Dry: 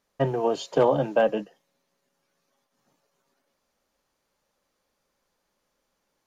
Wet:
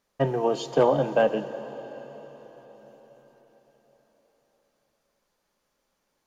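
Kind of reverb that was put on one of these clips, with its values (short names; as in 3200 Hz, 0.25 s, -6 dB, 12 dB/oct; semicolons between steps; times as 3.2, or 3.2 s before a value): plate-style reverb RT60 5 s, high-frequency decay 0.95×, DRR 11 dB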